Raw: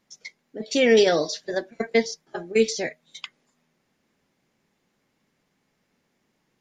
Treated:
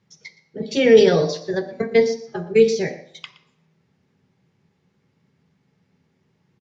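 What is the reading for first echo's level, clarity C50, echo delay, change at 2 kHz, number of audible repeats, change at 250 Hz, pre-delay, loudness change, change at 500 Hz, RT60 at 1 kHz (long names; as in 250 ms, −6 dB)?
−16.5 dB, 11.0 dB, 119 ms, 0.0 dB, 1, +4.0 dB, 3 ms, +4.5 dB, +5.5 dB, 0.65 s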